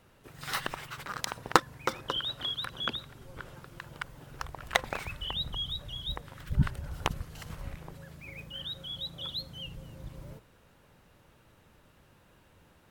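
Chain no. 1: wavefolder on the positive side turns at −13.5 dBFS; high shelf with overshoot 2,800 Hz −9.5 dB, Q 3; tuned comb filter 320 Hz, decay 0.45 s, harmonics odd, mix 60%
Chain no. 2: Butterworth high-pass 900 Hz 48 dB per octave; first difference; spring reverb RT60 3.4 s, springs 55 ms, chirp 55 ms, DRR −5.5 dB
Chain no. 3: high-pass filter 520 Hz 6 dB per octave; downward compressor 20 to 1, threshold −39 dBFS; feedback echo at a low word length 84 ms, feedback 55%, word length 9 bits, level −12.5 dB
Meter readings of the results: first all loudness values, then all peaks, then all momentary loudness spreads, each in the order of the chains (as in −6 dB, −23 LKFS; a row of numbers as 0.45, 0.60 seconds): −44.0, −39.0, −44.0 LKFS; −10.0, −11.0, −17.5 dBFS; 16, 15, 12 LU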